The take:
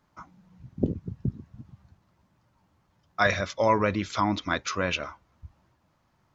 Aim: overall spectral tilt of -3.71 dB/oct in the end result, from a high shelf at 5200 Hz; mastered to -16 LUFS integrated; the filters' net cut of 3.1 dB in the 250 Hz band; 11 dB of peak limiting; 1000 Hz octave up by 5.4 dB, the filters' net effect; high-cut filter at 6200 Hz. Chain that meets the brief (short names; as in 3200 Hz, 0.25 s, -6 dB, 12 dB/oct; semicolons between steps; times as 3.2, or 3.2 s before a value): LPF 6200 Hz; bell 250 Hz -4.5 dB; bell 1000 Hz +6.5 dB; high shelf 5200 Hz -3 dB; gain +14.5 dB; limiter -2.5 dBFS